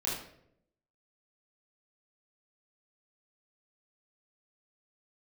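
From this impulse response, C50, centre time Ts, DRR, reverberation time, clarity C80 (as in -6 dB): 2.0 dB, 50 ms, -6.5 dB, 0.75 s, 6.0 dB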